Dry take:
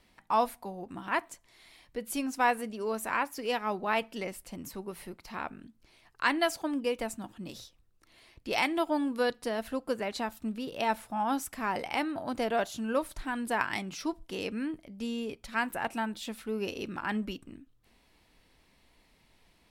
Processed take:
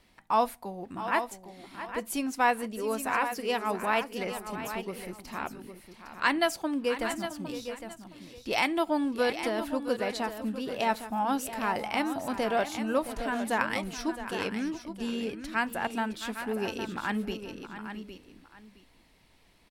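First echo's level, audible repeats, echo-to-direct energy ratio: −12.5 dB, 3, −8.0 dB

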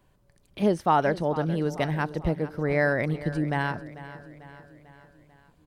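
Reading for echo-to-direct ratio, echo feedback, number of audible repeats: −14.0 dB, 54%, 4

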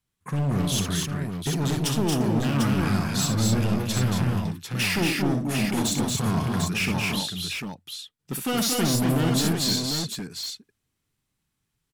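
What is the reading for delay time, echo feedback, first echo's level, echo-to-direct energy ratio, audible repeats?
63 ms, repeats not evenly spaced, −7.5 dB, 0.5 dB, 4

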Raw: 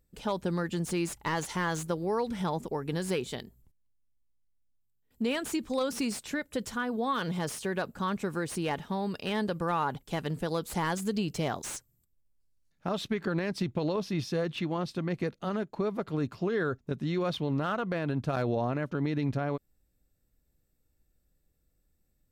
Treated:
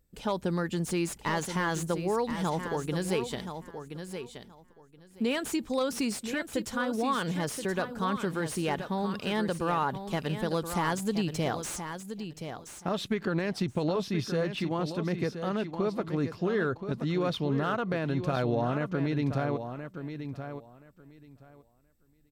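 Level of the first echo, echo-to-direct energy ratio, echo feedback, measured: −9.0 dB, −9.0 dB, 17%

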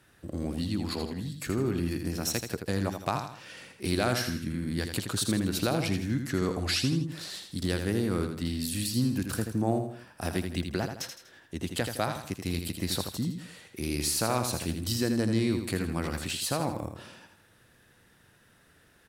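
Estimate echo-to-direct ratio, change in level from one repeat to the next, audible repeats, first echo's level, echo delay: −6.0 dB, −8.0 dB, 3, −7.0 dB, 81 ms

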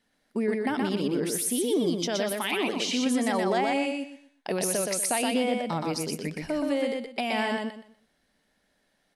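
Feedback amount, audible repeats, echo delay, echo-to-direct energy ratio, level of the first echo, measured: 25%, 3, 122 ms, −2.5 dB, −3.0 dB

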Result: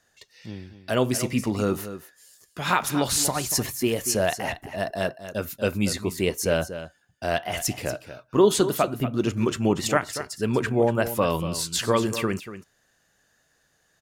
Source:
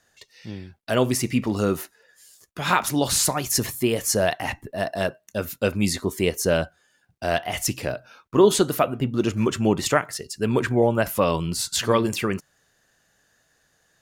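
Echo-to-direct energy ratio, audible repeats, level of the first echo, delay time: −12.0 dB, 1, −12.0 dB, 237 ms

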